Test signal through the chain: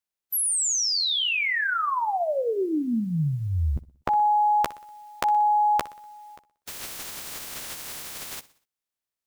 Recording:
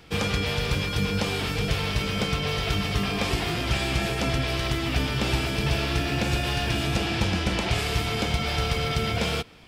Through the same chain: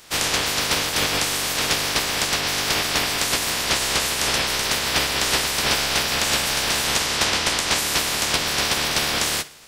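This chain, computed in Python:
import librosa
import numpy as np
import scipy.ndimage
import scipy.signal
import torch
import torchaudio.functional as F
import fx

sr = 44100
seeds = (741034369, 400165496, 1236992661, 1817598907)

y = fx.spec_clip(x, sr, under_db=30)
y = fx.doubler(y, sr, ms=13.0, db=-8.5)
y = fx.echo_feedback(y, sr, ms=61, feedback_pct=48, wet_db=-19.0)
y = y * 10.0 ** (3.0 / 20.0)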